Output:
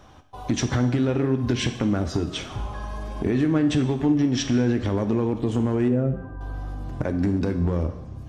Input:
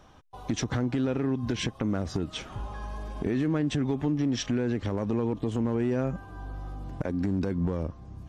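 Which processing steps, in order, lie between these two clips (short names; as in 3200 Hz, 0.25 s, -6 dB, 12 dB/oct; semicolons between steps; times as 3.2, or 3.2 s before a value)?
5.88–6.41 spectral contrast raised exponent 1.6; two-slope reverb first 0.83 s, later 2.5 s, from -27 dB, DRR 7 dB; gain +4.5 dB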